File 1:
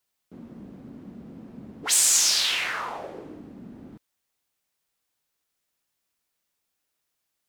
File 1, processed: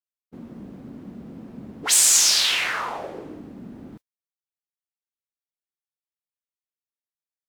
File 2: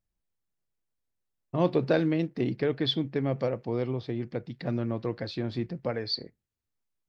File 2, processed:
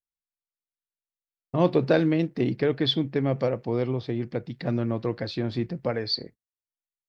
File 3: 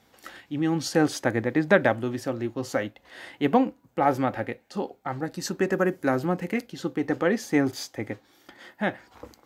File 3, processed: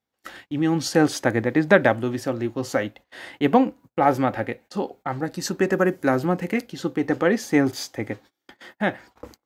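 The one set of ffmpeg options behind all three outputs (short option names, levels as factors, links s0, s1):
-af "agate=range=0.0447:threshold=0.00398:ratio=16:detection=peak,volume=1.5"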